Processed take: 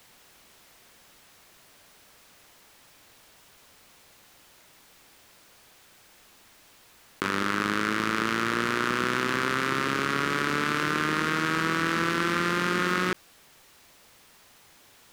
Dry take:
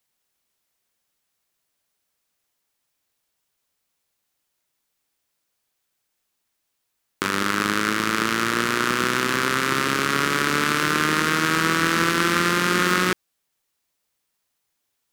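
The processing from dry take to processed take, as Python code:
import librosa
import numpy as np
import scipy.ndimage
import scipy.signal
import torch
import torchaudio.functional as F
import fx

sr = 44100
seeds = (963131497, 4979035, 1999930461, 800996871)

y = fx.high_shelf(x, sr, hz=5300.0, db=-9.5)
y = fx.env_flatten(y, sr, amount_pct=50)
y = F.gain(torch.from_numpy(y), -6.0).numpy()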